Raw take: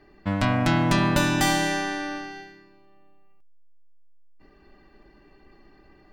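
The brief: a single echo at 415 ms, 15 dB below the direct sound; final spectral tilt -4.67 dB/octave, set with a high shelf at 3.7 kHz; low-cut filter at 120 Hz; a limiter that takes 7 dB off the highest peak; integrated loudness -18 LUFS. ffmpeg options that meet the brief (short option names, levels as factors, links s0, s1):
-af "highpass=120,highshelf=f=3700:g=-8,alimiter=limit=0.168:level=0:latency=1,aecho=1:1:415:0.178,volume=2.66"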